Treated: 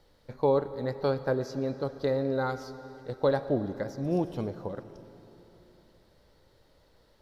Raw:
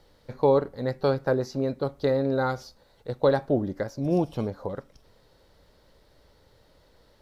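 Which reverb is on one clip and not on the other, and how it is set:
comb and all-pass reverb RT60 3.7 s, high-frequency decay 0.95×, pre-delay 40 ms, DRR 12.5 dB
level −4 dB

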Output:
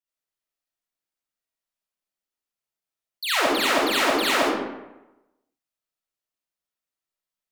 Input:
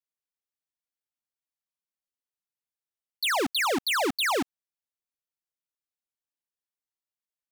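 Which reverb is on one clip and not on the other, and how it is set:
comb and all-pass reverb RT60 0.99 s, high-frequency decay 0.65×, pre-delay 20 ms, DRR −8 dB
level −3.5 dB

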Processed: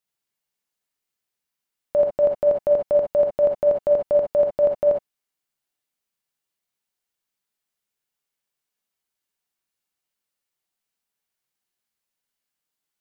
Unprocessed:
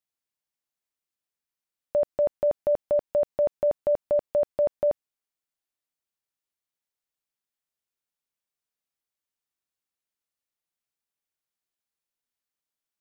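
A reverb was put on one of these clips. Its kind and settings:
reverb whose tail is shaped and stops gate 80 ms rising, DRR 0.5 dB
level +3 dB

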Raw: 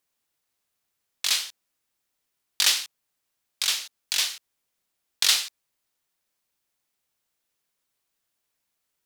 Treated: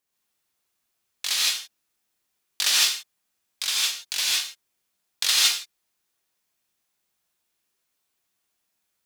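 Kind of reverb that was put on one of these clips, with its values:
reverb whose tail is shaped and stops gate 180 ms rising, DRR −4.5 dB
level −3.5 dB

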